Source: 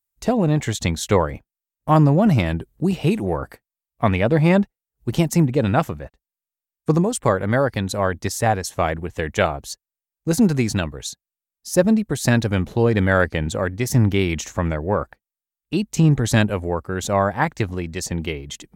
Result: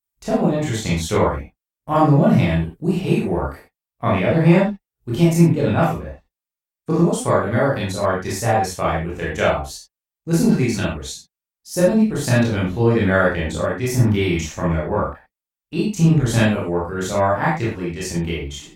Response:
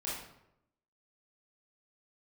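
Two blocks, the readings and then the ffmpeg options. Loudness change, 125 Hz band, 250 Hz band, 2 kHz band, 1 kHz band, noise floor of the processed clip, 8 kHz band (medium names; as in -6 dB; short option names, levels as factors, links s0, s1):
+1.5 dB, +1.0 dB, +1.5 dB, +0.5 dB, +1.5 dB, under -85 dBFS, -0.5 dB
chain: -filter_complex "[1:a]atrim=start_sample=2205,afade=t=out:st=0.18:d=0.01,atrim=end_sample=8379[s0];[0:a][s0]afir=irnorm=-1:irlink=0,volume=0.891"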